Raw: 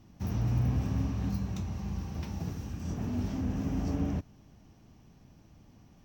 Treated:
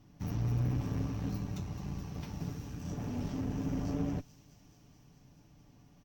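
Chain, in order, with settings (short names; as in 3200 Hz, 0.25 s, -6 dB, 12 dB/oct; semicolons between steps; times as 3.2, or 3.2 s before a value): tube stage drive 26 dB, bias 0.65; comb 6.9 ms, depth 44%; thin delay 0.215 s, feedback 79%, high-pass 4500 Hz, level -10 dB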